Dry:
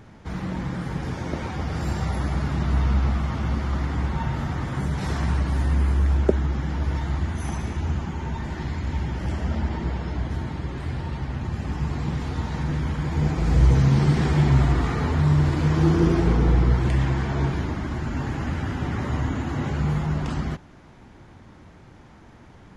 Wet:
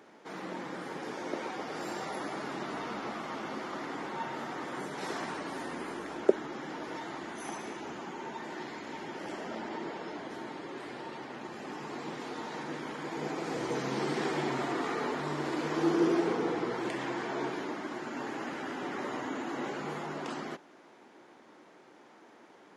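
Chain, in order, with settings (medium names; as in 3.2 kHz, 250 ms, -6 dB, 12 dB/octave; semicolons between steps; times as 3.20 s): ladder high-pass 270 Hz, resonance 25%; trim +1.5 dB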